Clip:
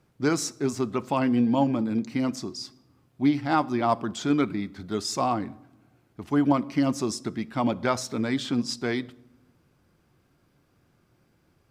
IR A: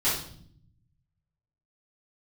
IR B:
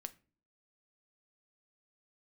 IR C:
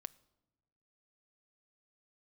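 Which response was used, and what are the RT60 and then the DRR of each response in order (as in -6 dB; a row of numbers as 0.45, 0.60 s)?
C; 0.60 s, not exponential, not exponential; -10.5, 10.0, 17.0 dB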